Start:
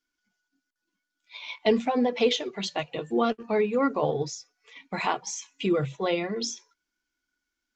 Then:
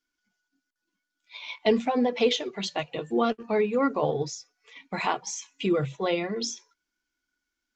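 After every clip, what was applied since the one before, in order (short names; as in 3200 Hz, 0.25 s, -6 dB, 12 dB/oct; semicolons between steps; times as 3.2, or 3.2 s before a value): nothing audible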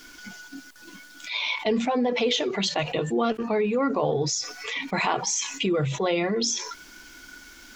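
fast leveller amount 70%; gain -3.5 dB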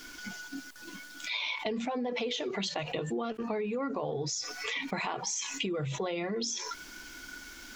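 compressor, threshold -31 dBFS, peak gain reduction 11.5 dB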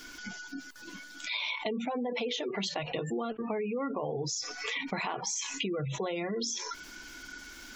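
spectral gate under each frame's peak -30 dB strong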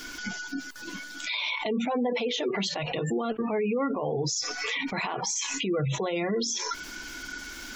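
limiter -27.5 dBFS, peak gain reduction 8 dB; gain +7 dB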